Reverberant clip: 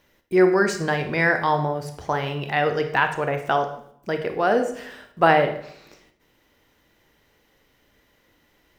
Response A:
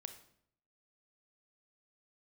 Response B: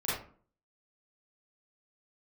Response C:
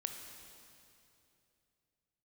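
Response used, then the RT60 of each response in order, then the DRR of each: A; 0.65, 0.45, 2.8 seconds; 7.5, −10.5, 4.0 decibels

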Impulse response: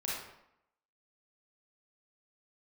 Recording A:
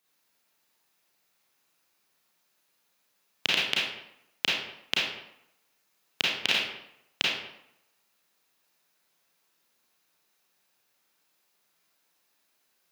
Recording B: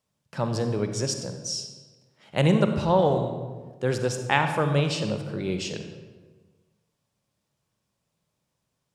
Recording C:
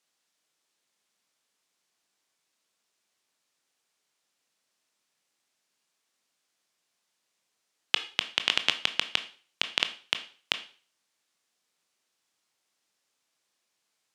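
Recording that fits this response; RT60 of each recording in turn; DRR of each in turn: A; 0.80, 1.4, 0.40 seconds; −6.5, 6.0, 8.5 decibels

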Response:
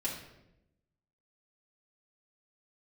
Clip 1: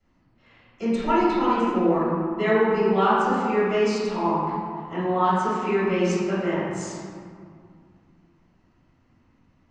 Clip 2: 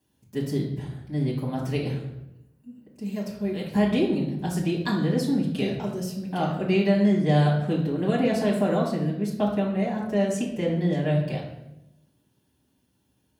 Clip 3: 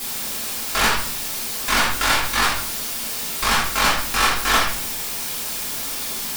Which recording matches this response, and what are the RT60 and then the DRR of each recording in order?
2; 2.2, 0.90, 0.55 seconds; −14.0, −5.5, −7.5 decibels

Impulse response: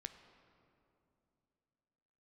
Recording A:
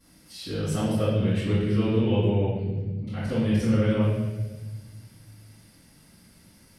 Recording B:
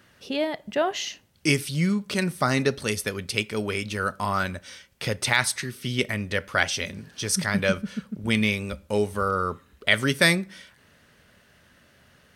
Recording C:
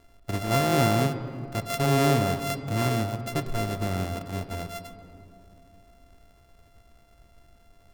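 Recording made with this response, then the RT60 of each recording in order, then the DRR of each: C; 1.3, 0.50, 2.9 seconds; −16.0, 17.5, 8.0 decibels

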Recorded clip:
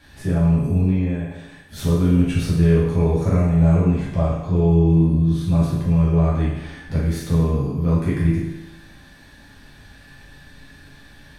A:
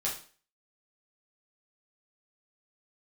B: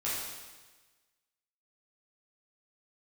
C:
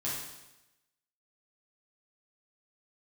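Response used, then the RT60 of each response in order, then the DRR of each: C; 0.40, 1.3, 0.95 seconds; −5.5, −9.5, −8.0 decibels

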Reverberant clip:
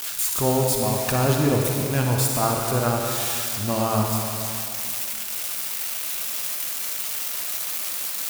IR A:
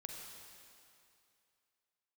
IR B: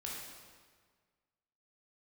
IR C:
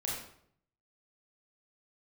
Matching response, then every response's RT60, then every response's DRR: A; 2.5, 1.6, 0.65 seconds; 0.5, −4.0, −4.5 decibels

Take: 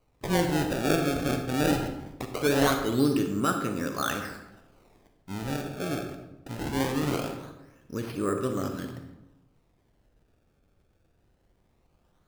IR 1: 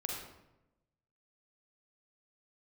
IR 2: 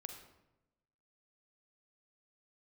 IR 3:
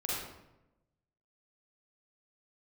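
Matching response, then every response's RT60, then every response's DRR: 2; 0.95, 0.95, 0.95 seconds; −1.0, 5.0, −6.5 decibels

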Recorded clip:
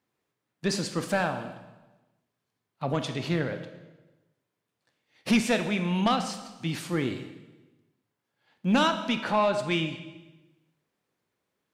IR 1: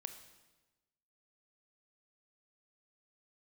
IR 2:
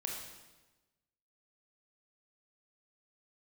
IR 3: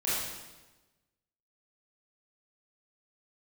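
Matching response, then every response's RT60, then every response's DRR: 1; 1.2, 1.2, 1.2 seconds; 8.0, −0.5, −10.0 decibels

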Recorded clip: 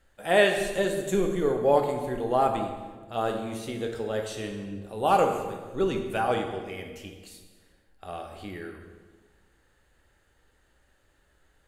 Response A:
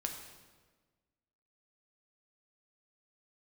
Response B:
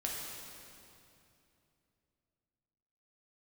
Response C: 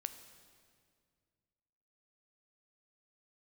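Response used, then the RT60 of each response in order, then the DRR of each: A; 1.4, 2.8, 2.1 seconds; 2.5, −3.5, 9.5 decibels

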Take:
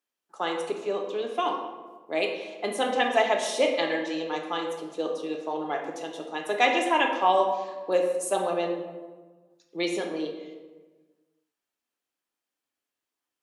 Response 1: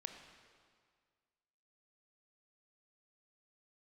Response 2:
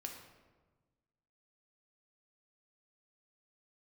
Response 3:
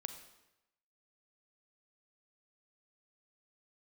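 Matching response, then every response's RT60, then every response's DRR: 2; 1.9, 1.3, 0.95 seconds; 5.0, 1.5, 8.0 decibels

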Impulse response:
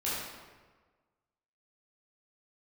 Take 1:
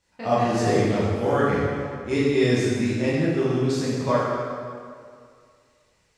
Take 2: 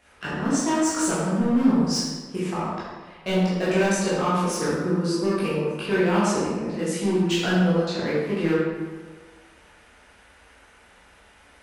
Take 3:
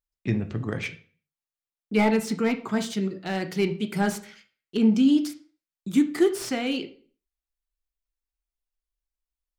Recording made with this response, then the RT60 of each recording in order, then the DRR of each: 2; 2.2, 1.4, 0.45 seconds; −9.0, −9.5, 7.5 decibels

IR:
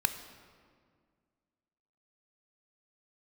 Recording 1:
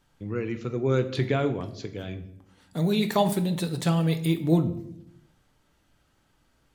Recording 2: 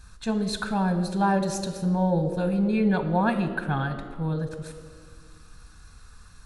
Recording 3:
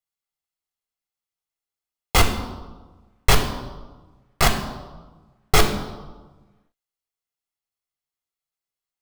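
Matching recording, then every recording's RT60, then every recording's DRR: 2; 0.75, 2.0, 1.3 seconds; 7.5, 8.5, 3.5 decibels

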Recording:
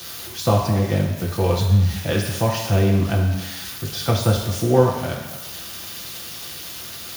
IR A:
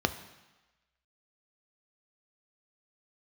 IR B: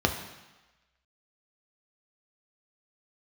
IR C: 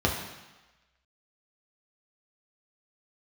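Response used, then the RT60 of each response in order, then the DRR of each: C; 1.1, 1.1, 1.1 seconds; 8.5, 3.0, −2.0 decibels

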